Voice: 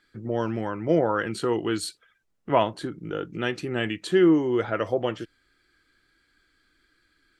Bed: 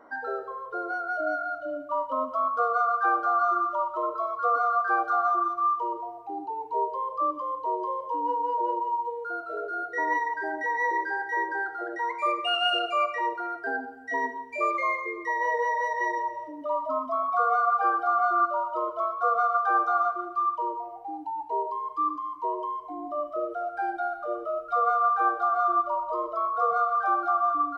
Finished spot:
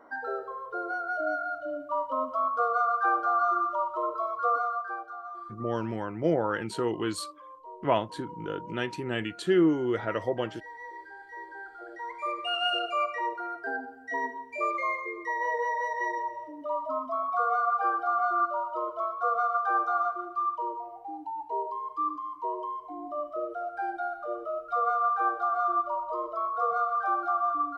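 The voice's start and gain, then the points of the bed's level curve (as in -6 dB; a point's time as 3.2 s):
5.35 s, -4.0 dB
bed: 4.51 s -1.5 dB
5.16 s -16.5 dB
11.18 s -16.5 dB
12.64 s -3 dB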